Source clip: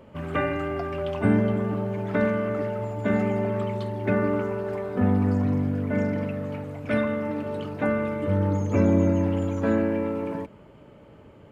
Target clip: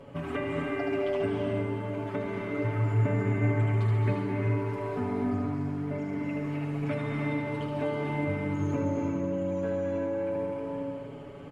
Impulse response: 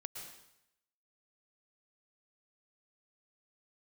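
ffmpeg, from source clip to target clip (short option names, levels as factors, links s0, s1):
-filter_complex "[0:a]aecho=1:1:7.1:0.95,aecho=1:1:75.8|137:0.562|0.316,acompressor=threshold=0.0355:ratio=6,asettb=1/sr,asplit=3[s0][s1][s2];[s0]atrim=end=2.644[s3];[s1]atrim=start=2.64:end=4.14,asetpts=PTS-STARTPTS,afade=t=in:d=0.004:c=qsin,afade=t=out:st=1.496:d=0.004:c=qsin,equalizer=f=125:t=o:w=1:g=11,equalizer=f=2000:t=o:w=1:g=4,equalizer=f=4000:t=o:w=1:g=-6[s4];[s2]atrim=start=4.136[s5];[s3][s4]acrossfade=d=0.004:c1=hsin:c2=qsin[s6];[s6][s5]acrossfade=d=0.004:c1=qsin:c2=hsin[s7];[1:a]atrim=start_sample=2205,asetrate=22491,aresample=44100[s8];[s7][s8]afir=irnorm=-1:irlink=0"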